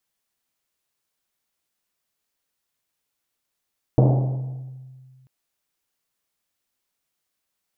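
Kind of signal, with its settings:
drum after Risset length 1.29 s, pitch 130 Hz, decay 2.00 s, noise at 470 Hz, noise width 600 Hz, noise 25%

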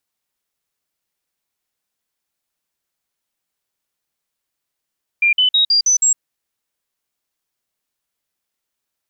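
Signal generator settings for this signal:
stepped sweep 2,390 Hz up, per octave 3, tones 6, 0.11 s, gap 0.05 s −10.5 dBFS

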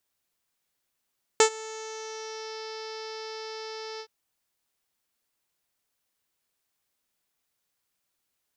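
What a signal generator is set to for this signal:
subtractive voice saw A4 24 dB per octave, low-pass 5,200 Hz, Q 4.9, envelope 0.5 octaves, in 1.20 s, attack 2 ms, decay 0.09 s, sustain −23 dB, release 0.07 s, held 2.60 s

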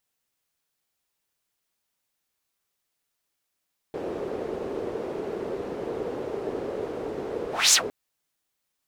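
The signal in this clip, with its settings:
pass-by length 3.96 s, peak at 0:03.79, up 0.24 s, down 0.11 s, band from 430 Hz, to 6,800 Hz, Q 3.4, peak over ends 16 dB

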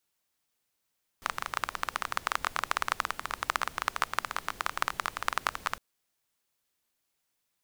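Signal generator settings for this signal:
rain-like ticks over hiss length 4.56 s, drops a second 17, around 1,200 Hz, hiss −15.5 dB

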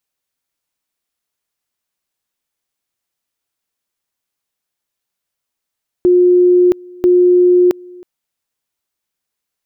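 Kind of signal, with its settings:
tone at two levels in turn 358 Hz −6 dBFS, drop 26 dB, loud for 0.67 s, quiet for 0.32 s, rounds 2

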